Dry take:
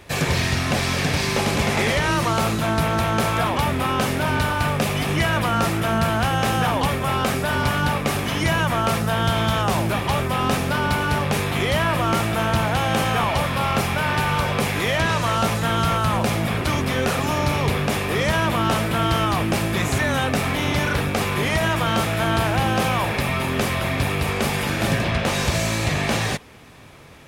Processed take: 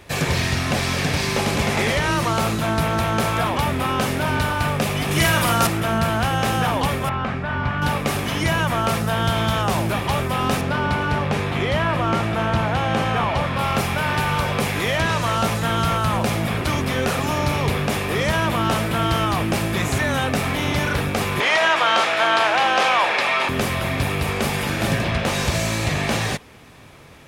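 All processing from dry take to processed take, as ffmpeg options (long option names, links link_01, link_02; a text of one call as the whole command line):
ffmpeg -i in.wav -filter_complex "[0:a]asettb=1/sr,asplit=3[link_01][link_02][link_03];[link_01]atrim=end=5.114[link_04];[link_02]atrim=start=5.11:end=5.67,asetpts=PTS-STARTPTS,afade=type=in:duration=0.004:curve=qsin,afade=type=out:start_time=0.556:duration=0.004:curve=qsin,highshelf=frequency=4600:gain=11.5,asplit=2[link_05][link_06];[link_06]adelay=48,volume=-3.5dB[link_07];[link_05][link_07]amix=inputs=2:normalize=0,atrim=end_sample=24696[link_08];[link_03]atrim=start=5.666[link_09];[link_04][link_08]acrossfade=duration=0.004:curve1=hsin:curve2=qsin[link_10];[link_10][link_09]acrossfade=duration=0.004:curve1=qsin:curve2=hsin,asettb=1/sr,asplit=3[link_11][link_12][link_13];[link_11]atrim=end=7.094[link_14];[link_12]atrim=start=7.09:end=7.82,asetpts=PTS-STARTPTS,afade=type=in:duration=0.004:curve=qsin,afade=type=out:start_time=0.726:duration=0.004:curve=qsin,lowpass=2000,equalizer=frequency=450:width_type=o:width=1.4:gain=-7.5[link_15];[link_13]atrim=start=7.816[link_16];[link_14][link_15]acrossfade=duration=0.004:curve1=hsin:curve2=qsin[link_17];[link_17][link_16]acrossfade=duration=0.004:curve1=qsin:curve2=hsin,asettb=1/sr,asplit=3[link_18][link_19][link_20];[link_18]atrim=end=10.614[link_21];[link_19]atrim=start=10.61:end=13.59,asetpts=PTS-STARTPTS,afade=type=in:duration=0.004:curve=qsin,afade=type=out:start_time=2.976:duration=0.004:curve=qsin,highpass=41,aemphasis=mode=reproduction:type=50fm[link_22];[link_20]atrim=start=13.586[link_23];[link_21][link_22]acrossfade=duration=0.004:curve1=hsin:curve2=qsin[link_24];[link_24][link_23]acrossfade=duration=0.004:curve1=qsin:curve2=hsin,asettb=1/sr,asplit=3[link_25][link_26][link_27];[link_25]atrim=end=21.404[link_28];[link_26]atrim=start=21.4:end=23.49,asetpts=PTS-STARTPTS,afade=type=in:duration=0.004:curve=qsin,afade=type=out:start_time=2.086:duration=0.004:curve=qsin,highpass=630,lowpass=5300,acontrast=72[link_29];[link_27]atrim=start=23.486[link_30];[link_28][link_29]acrossfade=duration=0.004:curve1=hsin:curve2=qsin[link_31];[link_31][link_30]acrossfade=duration=0.004:curve1=qsin:curve2=hsin" out.wav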